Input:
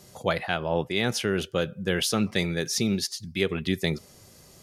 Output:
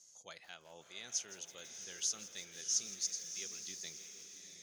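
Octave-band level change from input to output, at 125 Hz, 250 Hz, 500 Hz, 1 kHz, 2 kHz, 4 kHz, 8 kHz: −36.0, −34.0, −30.0, −26.5, −22.0, −13.0, −1.5 decibels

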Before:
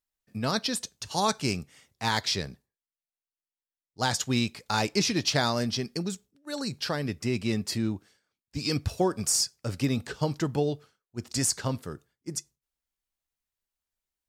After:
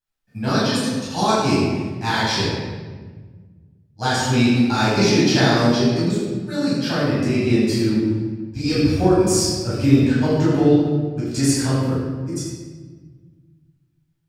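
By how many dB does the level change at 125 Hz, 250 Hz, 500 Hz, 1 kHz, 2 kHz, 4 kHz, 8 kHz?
+12.0, +13.5, +11.5, +8.5, +9.0, +5.5, +3.0 decibels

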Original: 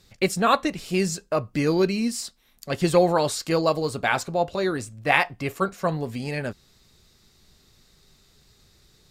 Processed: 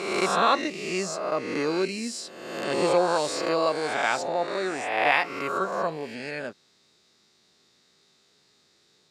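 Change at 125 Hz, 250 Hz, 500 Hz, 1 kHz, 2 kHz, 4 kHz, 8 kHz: −12.0, −5.5, −2.0, 0.0, −0.5, −0.5, −2.5 decibels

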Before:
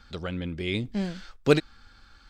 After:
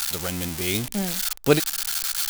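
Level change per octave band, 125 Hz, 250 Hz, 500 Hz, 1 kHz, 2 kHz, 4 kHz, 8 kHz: +1.5, +1.5, +2.0, +5.0, +4.0, +9.5, +24.5 decibels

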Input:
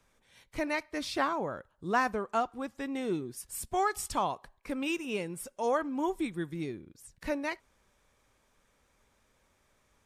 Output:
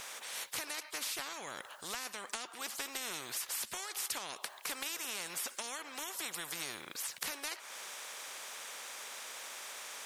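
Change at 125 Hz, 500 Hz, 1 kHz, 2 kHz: −17.5, −16.0, −12.5, −4.0 decibels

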